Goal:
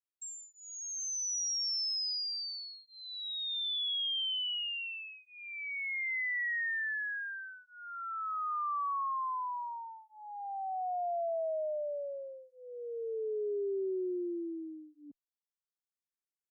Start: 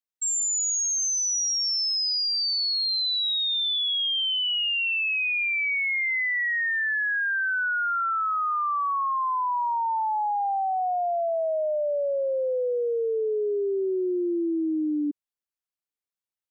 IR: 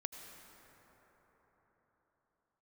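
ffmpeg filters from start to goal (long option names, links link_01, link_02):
-filter_complex "[0:a]asplit=3[link_01][link_02][link_03];[link_01]afade=type=out:start_time=8.47:duration=0.02[link_04];[link_02]bass=frequency=250:gain=-14,treble=frequency=4000:gain=6,afade=type=in:start_time=8.47:duration=0.02,afade=type=out:start_time=9.69:duration=0.02[link_05];[link_03]afade=type=in:start_time=9.69:duration=0.02[link_06];[link_04][link_05][link_06]amix=inputs=3:normalize=0,asplit=2[link_07][link_08];[link_08]afreqshift=0.29[link_09];[link_07][link_09]amix=inputs=2:normalize=1,volume=-8dB"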